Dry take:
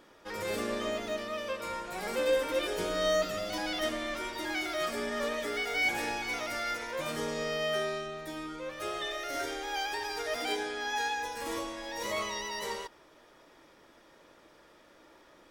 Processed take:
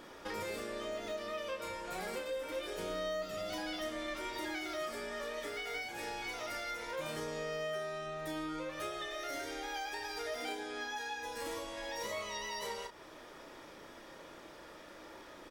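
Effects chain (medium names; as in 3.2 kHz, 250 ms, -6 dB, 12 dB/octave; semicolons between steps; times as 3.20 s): compression, threshold -45 dBFS, peak gain reduction 19.5 dB; doubling 32 ms -6.5 dB; trim +5.5 dB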